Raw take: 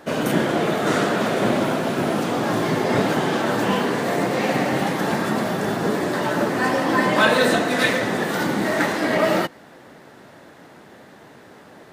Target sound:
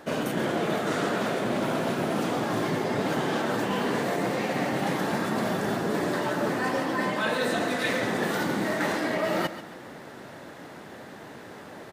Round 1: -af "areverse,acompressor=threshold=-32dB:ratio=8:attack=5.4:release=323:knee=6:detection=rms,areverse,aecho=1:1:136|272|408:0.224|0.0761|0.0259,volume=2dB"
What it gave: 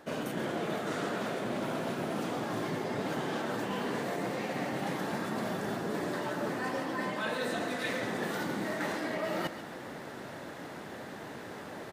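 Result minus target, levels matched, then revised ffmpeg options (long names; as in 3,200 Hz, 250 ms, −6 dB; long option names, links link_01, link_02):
downward compressor: peak gain reduction +7 dB
-af "areverse,acompressor=threshold=-24dB:ratio=8:attack=5.4:release=323:knee=6:detection=rms,areverse,aecho=1:1:136|272|408:0.224|0.0761|0.0259,volume=2dB"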